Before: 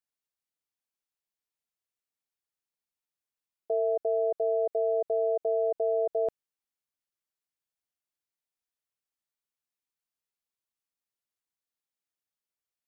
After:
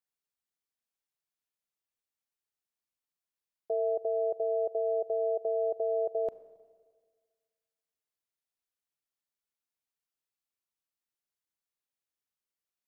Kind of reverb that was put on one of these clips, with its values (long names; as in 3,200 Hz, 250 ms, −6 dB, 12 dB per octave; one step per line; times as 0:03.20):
four-comb reverb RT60 1.7 s, combs from 30 ms, DRR 14.5 dB
level −2.5 dB